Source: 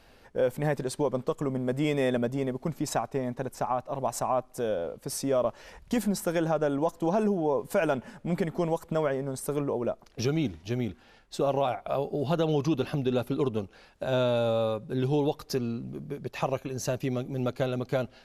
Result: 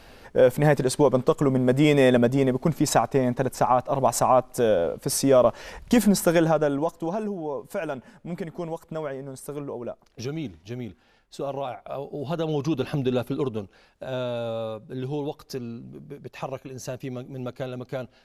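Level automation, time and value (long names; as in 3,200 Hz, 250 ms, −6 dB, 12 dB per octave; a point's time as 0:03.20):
0:06.31 +8.5 dB
0:07.27 −4 dB
0:12.00 −4 dB
0:13.01 +3.5 dB
0:14.08 −3.5 dB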